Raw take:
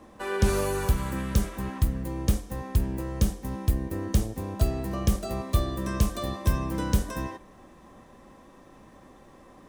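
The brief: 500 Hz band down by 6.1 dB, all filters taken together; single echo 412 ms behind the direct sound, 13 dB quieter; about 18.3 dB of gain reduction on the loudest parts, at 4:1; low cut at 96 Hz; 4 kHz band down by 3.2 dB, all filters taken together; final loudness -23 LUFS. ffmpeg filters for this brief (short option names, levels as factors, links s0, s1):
-af "highpass=96,equalizer=f=500:t=o:g=-8.5,equalizer=f=4000:t=o:g=-4,acompressor=threshold=0.00562:ratio=4,aecho=1:1:412:0.224,volume=16.8"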